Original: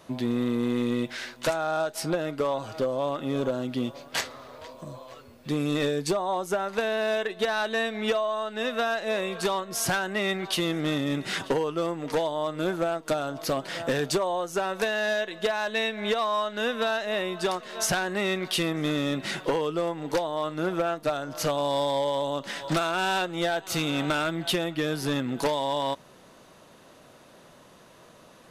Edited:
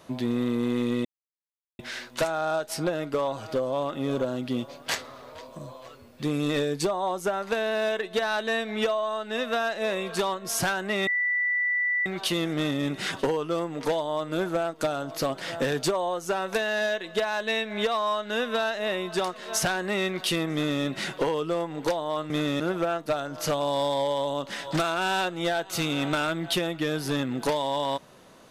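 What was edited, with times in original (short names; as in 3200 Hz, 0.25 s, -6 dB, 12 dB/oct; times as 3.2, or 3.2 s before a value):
1.05 insert silence 0.74 s
10.33 add tone 1970 Hz -22.5 dBFS 0.99 s
18.8–19.1 copy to 20.57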